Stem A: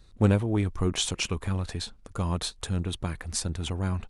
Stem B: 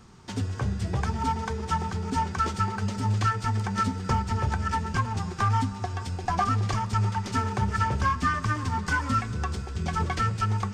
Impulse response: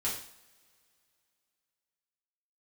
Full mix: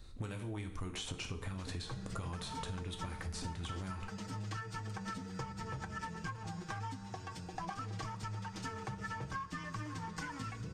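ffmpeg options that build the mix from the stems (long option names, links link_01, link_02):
-filter_complex "[0:a]acrossover=split=1400|4400[link_01][link_02][link_03];[link_01]acompressor=threshold=-34dB:ratio=4[link_04];[link_02]acompressor=threshold=-42dB:ratio=4[link_05];[link_03]acompressor=threshold=-48dB:ratio=4[link_06];[link_04][link_05][link_06]amix=inputs=3:normalize=0,volume=-2.5dB,asplit=2[link_07][link_08];[link_08]volume=-5.5dB[link_09];[1:a]bandreject=frequency=50:width_type=h:width=6,bandreject=frequency=100:width_type=h:width=6,bandreject=frequency=150:width_type=h:width=6,bandreject=frequency=200:width_type=h:width=6,aecho=1:1:6.3:0.8,adelay=1300,volume=-11dB[link_10];[2:a]atrim=start_sample=2205[link_11];[link_09][link_11]afir=irnorm=-1:irlink=0[link_12];[link_07][link_10][link_12]amix=inputs=3:normalize=0,acompressor=threshold=-38dB:ratio=6"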